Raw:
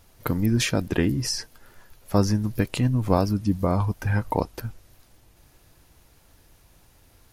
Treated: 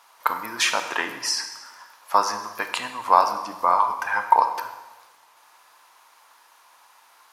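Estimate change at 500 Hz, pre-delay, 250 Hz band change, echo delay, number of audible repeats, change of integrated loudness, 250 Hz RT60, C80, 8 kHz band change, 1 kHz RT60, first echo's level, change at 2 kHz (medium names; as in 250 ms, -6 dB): -3.0 dB, 21 ms, -18.0 dB, no echo, no echo, +1.5 dB, 1.3 s, 10.0 dB, +3.0 dB, 1.1 s, no echo, +7.5 dB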